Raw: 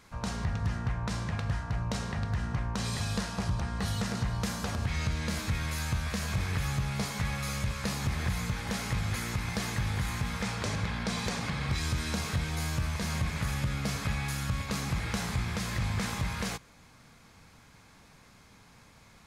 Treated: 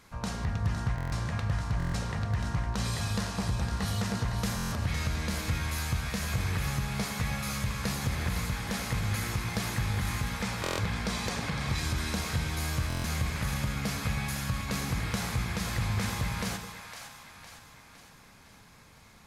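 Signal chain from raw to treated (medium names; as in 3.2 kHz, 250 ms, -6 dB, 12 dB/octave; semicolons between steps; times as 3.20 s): peaking EQ 12 kHz +5.5 dB 0.31 oct; two-band feedback delay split 620 Hz, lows 105 ms, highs 509 ms, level -8 dB; buffer glitch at 0.96/1.78/4.56/10.62/12.88 s, samples 1024, times 6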